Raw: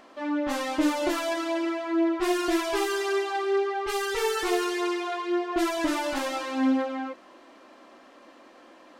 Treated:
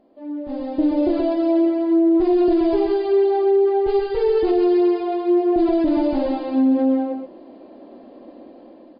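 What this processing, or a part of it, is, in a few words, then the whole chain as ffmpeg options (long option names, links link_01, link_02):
low-bitrate web radio: -af "firequalizer=gain_entry='entry(270,0);entry(710,-6);entry(1200,-23);entry(2100,-22);entry(9200,-10)':delay=0.05:min_phase=1,aecho=1:1:127:0.473,dynaudnorm=framelen=350:gausssize=5:maxgain=14dB,alimiter=limit=-10.5dB:level=0:latency=1:release=35" -ar 11025 -c:a libmp3lame -b:a 24k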